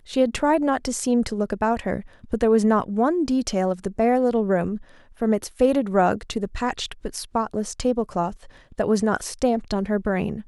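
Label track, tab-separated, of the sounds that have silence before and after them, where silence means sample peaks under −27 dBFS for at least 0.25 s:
2.330000	4.770000	sound
5.220000	8.300000	sound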